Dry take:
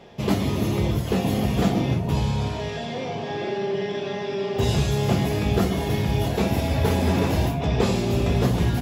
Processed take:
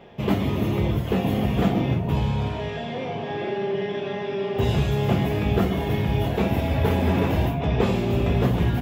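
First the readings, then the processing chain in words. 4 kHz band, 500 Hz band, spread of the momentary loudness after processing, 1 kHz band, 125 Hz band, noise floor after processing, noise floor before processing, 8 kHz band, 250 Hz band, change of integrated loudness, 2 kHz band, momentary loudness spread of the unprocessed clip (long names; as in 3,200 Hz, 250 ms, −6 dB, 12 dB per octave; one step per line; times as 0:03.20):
−3.0 dB, 0.0 dB, 7 LU, 0.0 dB, 0.0 dB, −31 dBFS, −31 dBFS, below −10 dB, 0.0 dB, 0.0 dB, 0.0 dB, 7 LU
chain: flat-topped bell 6,800 Hz −10.5 dB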